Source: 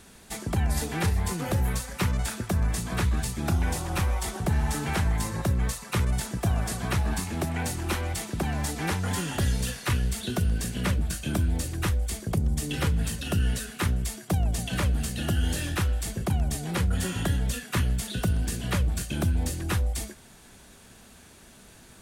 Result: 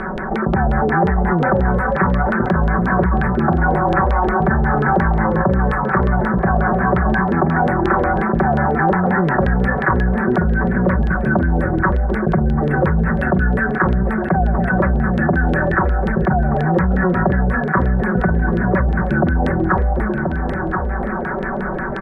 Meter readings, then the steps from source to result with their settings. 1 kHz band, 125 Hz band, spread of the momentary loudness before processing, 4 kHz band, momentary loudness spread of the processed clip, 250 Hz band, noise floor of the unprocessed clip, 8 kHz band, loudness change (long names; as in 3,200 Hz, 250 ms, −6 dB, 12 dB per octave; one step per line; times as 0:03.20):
+18.0 dB, +8.5 dB, 2 LU, can't be measured, 3 LU, +14.5 dB, −52 dBFS, below −25 dB, +11.0 dB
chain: running median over 9 samples
elliptic band-stop filter 1,700–9,600 Hz, stop band 40 dB
low-shelf EQ 270 Hz −6.5 dB
comb filter 5.3 ms, depth 82%
automatic gain control gain up to 7.5 dB
tape wow and flutter 29 cents
auto-filter low-pass saw down 5.6 Hz 410–3,300 Hz
single-tap delay 1,030 ms −15 dB
envelope flattener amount 70%
level +1.5 dB